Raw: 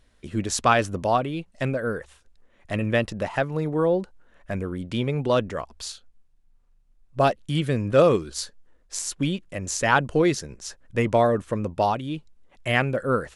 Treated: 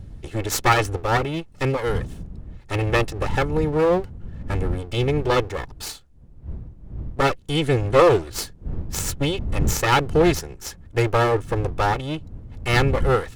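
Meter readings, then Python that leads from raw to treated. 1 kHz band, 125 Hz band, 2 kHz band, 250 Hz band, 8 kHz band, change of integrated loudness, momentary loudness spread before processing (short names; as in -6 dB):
+2.0 dB, +4.5 dB, +2.5 dB, +1.0 dB, +1.5 dB, +2.5 dB, 14 LU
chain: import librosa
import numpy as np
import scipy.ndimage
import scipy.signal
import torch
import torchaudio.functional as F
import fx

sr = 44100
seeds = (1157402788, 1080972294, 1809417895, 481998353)

y = fx.lower_of_two(x, sr, delay_ms=2.3)
y = fx.dmg_wind(y, sr, seeds[0], corner_hz=94.0, level_db=-34.0)
y = F.gain(torch.from_numpy(y), 4.0).numpy()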